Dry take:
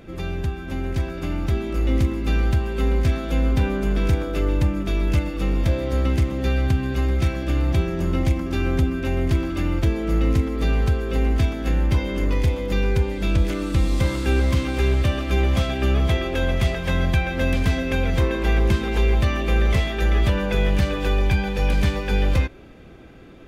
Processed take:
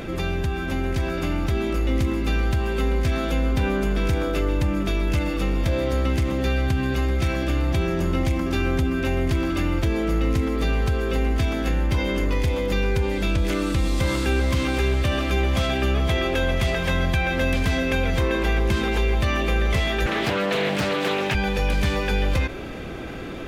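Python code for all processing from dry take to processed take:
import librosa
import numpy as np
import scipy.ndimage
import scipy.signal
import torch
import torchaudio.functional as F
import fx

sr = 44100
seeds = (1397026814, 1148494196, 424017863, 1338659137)

y = fx.chain(x, sr, fx.highpass(hz=120.0, slope=24),
    fx.hum_notches(base_hz=50, count=8),
    fx.doppler_dist(depth_ms=0.7), at=(20.06, 21.35))
y = fx.low_shelf(y, sr, hz=380.0, db=-4.5)
y = fx.env_flatten(y, sr, amount_pct=50)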